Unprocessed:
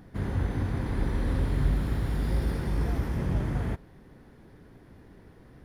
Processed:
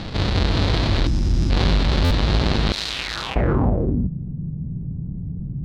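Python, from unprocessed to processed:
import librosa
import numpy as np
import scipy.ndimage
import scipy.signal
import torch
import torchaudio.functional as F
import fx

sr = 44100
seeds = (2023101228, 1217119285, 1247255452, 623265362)

p1 = fx.halfwave_hold(x, sr)
p2 = fx.filter_sweep_lowpass(p1, sr, from_hz=4100.0, to_hz=160.0, start_s=2.89, end_s=3.78, q=3.8)
p3 = p2 + fx.echo_single(p2, sr, ms=321, db=-3.5, dry=0)
p4 = fx.spec_box(p3, sr, start_s=1.06, length_s=0.44, low_hz=370.0, high_hz=4800.0, gain_db=-14)
p5 = fx.pre_emphasis(p4, sr, coefficient=0.97, at=(2.72, 3.36))
p6 = fx.buffer_glitch(p5, sr, at_s=(2.04,), block=512, repeats=5)
y = fx.env_flatten(p6, sr, amount_pct=50)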